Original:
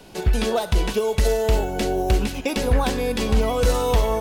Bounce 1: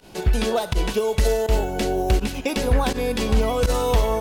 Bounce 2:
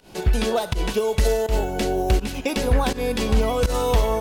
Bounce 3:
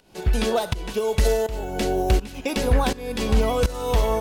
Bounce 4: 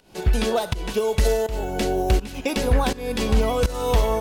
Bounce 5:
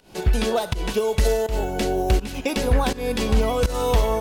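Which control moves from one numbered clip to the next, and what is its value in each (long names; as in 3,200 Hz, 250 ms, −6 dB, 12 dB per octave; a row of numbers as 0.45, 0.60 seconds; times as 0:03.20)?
fake sidechain pumping, release: 66, 132, 536, 365, 227 milliseconds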